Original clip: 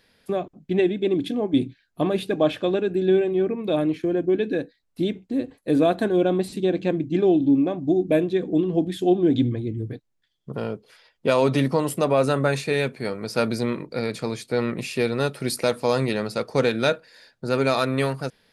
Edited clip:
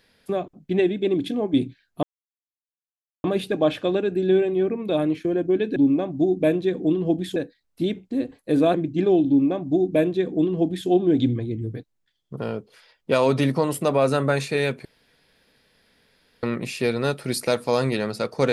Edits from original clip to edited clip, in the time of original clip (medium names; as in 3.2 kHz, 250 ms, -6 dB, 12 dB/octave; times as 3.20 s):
2.03 s: insert silence 1.21 s
5.93–6.90 s: delete
7.44–9.04 s: copy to 4.55 s
13.01–14.59 s: room tone